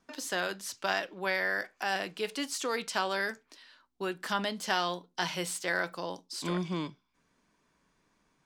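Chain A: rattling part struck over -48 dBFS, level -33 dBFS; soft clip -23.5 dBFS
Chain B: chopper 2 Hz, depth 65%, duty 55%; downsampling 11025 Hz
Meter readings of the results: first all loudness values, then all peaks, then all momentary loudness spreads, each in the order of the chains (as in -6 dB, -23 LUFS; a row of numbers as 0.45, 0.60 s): -34.5, -36.0 LUFS; -23.5, -13.5 dBFS; 5, 9 LU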